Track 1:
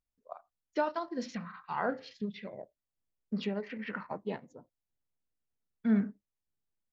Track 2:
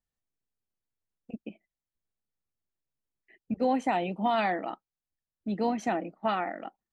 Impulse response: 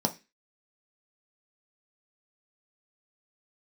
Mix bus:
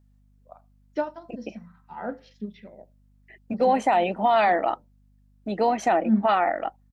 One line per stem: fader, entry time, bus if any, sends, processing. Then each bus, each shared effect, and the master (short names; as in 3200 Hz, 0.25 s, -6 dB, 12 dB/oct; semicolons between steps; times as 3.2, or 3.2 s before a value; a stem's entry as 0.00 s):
+2.5 dB, 0.20 s, send -17 dB, upward expander 1.5:1, over -39 dBFS; auto duck -19 dB, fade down 0.30 s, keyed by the second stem
+0.5 dB, 0.00 s, no send, EQ curve 230 Hz 0 dB, 630 Hz +12 dB, 3100 Hz +7 dB; limiter -12.5 dBFS, peak gain reduction 6.5 dB; hum 50 Hz, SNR 33 dB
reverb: on, RT60 0.25 s, pre-delay 3 ms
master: dry